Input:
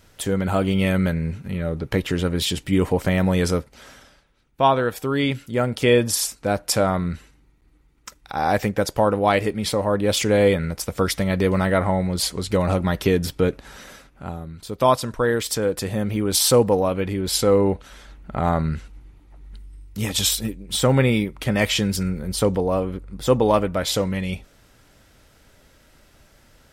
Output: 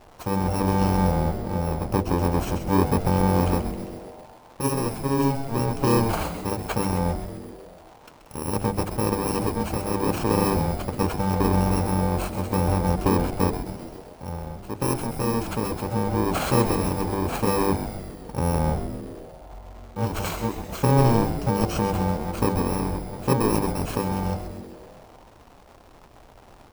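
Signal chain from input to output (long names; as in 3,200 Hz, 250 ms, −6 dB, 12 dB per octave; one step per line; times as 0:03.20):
samples in bit-reversed order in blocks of 64 samples
parametric band 180 Hz −2.5 dB
mains-hum notches 50/100/150/200/250/300/350/400/450/500 Hz
surface crackle 370 per second −32 dBFS
drawn EQ curve 210 Hz 0 dB, 810 Hz +5 dB, 1,800 Hz −9 dB, 11,000 Hz −19 dB
on a send: echo with shifted repeats 131 ms, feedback 63%, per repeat −140 Hz, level −9 dB
on the sum: level +2 dB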